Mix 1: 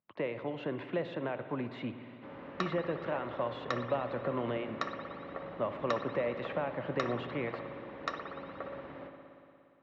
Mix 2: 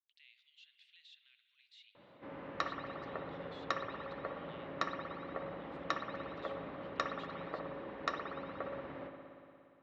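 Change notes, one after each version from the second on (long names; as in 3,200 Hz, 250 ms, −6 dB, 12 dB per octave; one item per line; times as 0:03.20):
speech: add inverse Chebyshev high-pass filter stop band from 850 Hz, stop band 70 dB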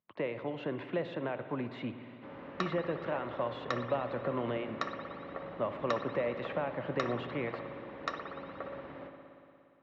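speech: remove inverse Chebyshev high-pass filter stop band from 850 Hz, stop band 70 dB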